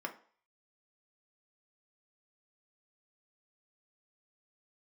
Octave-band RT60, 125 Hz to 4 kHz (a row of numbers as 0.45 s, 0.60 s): 0.30 s, 0.35 s, 0.45 s, 0.50 s, 0.45 s, 0.45 s